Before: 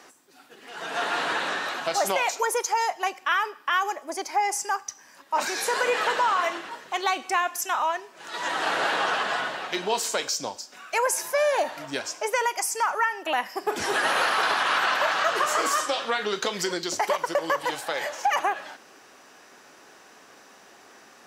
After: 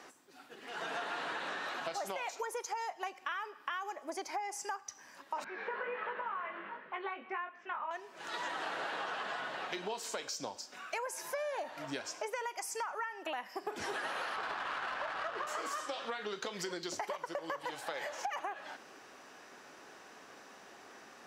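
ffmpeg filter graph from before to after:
-filter_complex "[0:a]asettb=1/sr,asplit=3[s0][s1][s2];[s0]atrim=end=5.444[s3];[s1]atrim=start=5.44:end=7.91,asetpts=PTS-STARTPTS,afade=t=in:d=0.004:c=qsin,afade=t=out:st=2.466:d=0.004:c=qsin,flanger=delay=18.5:depth=3.3:speed=1.4,highpass=f=170:w=0.5412,highpass=f=170:w=1.3066,equalizer=f=200:t=q:w=4:g=6,equalizer=f=310:t=q:w=4:g=-7,equalizer=f=740:t=q:w=4:g=-7,lowpass=f=2400:w=0.5412,lowpass=f=2400:w=1.3066[s4];[s2]atrim=start=7.906[s5];[s3][s4]acrossfade=d=0.004:c1=hsin:c2=qsin[s6];[s6][s5]acrossfade=d=0.004:c1=qsin:c2=hsin,asettb=1/sr,asplit=3[s7][s8][s9];[s7]atrim=end=14.364[s10];[s8]atrim=start=14.36:end=15.47,asetpts=PTS-STARTPTS,afade=t=in:d=0.004:c=qsin,afade=t=out:st=1.106:d=0.004:c=qsin,equalizer=f=4900:w=4.1:g=4,adynamicsmooth=sensitivity=1.5:basefreq=1900[s11];[s9]atrim=start=15.466[s12];[s10][s11]acrossfade=d=0.004:c1=hsin:c2=qsin[s13];[s13][s12]acrossfade=d=0.004:c1=qsin:c2=hsin,highshelf=f=5500:g=-6.5,acompressor=threshold=0.02:ratio=6,volume=0.75"

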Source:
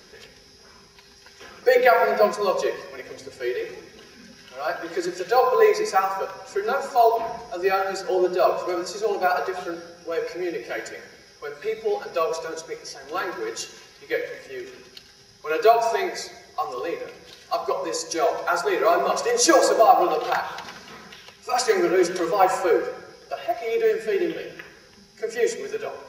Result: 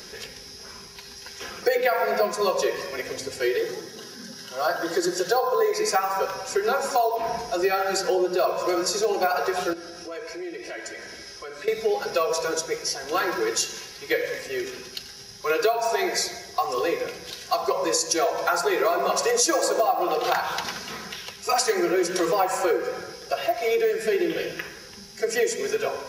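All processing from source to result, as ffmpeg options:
-filter_complex "[0:a]asettb=1/sr,asplit=3[s0][s1][s2];[s0]atrim=end=3.584[s3];[s1]atrim=start=3.58:end=5.73,asetpts=PTS-STARTPTS,afade=t=in:d=0.004:c=qsin,afade=t=out:st=2.146:d=0.004:c=qsin,highpass=f=100:w=0.5412,highpass=f=100:w=1.3066,equalizer=f=2400:w=4.6:g=-15[s4];[s2]atrim=start=5.726[s5];[s3][s4]acrossfade=d=0.004:c1=hsin:c2=qsin[s6];[s6][s5]acrossfade=d=0.004:c1=qsin:c2=hsin,asettb=1/sr,asplit=3[s7][s8][s9];[s7]atrim=end=9.734[s10];[s8]atrim=start=9.73:end=11.68,asetpts=PTS-STARTPTS,afade=t=in:d=0.004:c=qsin,afade=t=out:st=1.946:d=0.004:c=qsin,lowpass=f=11000:w=0.5412,lowpass=f=11000:w=1.3066,aecho=1:1:3.1:0.39,atrim=end_sample=85995,acompressor=threshold=0.00794:ratio=3:attack=3.2:release=140:knee=1:detection=peak[s11];[s9]atrim=start=11.676[s12];[s10][s11]acrossfade=d=0.004:c1=hsin:c2=qsin[s13];[s13][s12]acrossfade=d=0.004:c1=qsin:c2=hsin,highshelf=f=5100:g=8.5,acompressor=threshold=0.0562:ratio=6,volume=1.88"

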